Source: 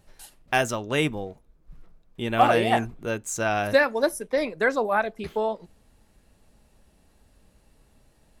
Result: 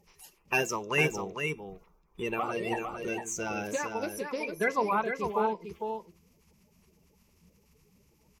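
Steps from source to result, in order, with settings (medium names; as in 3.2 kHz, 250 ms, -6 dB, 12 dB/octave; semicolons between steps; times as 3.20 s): coarse spectral quantiser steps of 30 dB; rippled EQ curve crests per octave 0.79, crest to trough 10 dB; 2.33–4.53 s: compression 3:1, threshold -27 dBFS, peak gain reduction 9.5 dB; bass shelf 62 Hz -11.5 dB; feedback comb 340 Hz, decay 0.37 s, harmonics all, mix 40%; delay 453 ms -6 dB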